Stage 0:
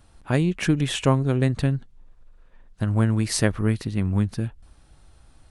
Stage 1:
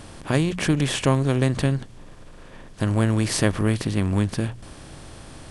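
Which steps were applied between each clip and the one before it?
per-bin compression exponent 0.6; notches 60/120/180 Hz; gain -1.5 dB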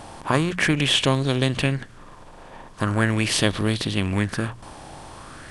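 low shelf 160 Hz -3.5 dB; LFO bell 0.41 Hz 810–3900 Hz +12 dB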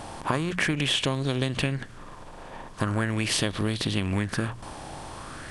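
compressor, threshold -23 dBFS, peak gain reduction 9.5 dB; gain +1 dB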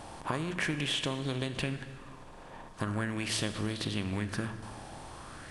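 plate-style reverb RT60 2.1 s, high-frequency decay 0.75×, DRR 9.5 dB; gain -7 dB

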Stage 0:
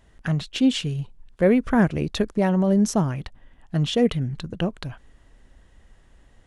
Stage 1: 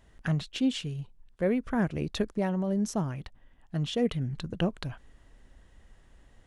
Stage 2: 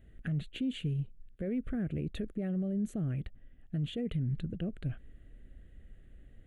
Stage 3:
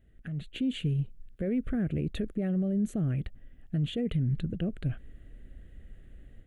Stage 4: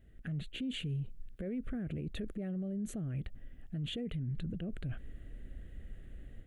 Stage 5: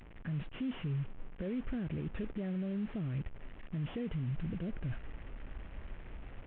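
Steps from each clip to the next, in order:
vocal rider within 4 dB 0.5 s; gain -7 dB
tilt shelf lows +5 dB; limiter -24 dBFS, peak gain reduction 11.5 dB; fixed phaser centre 2300 Hz, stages 4; gain -1.5 dB
AGC gain up to 9.5 dB; gain -5 dB
limiter -33 dBFS, peak gain reduction 11.5 dB; gain +1.5 dB
delta modulation 16 kbps, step -47.5 dBFS; gain +1 dB

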